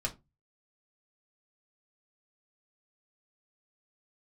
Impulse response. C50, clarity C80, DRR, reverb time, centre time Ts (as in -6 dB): 18.0 dB, 26.5 dB, -1.5 dB, 0.25 s, 8 ms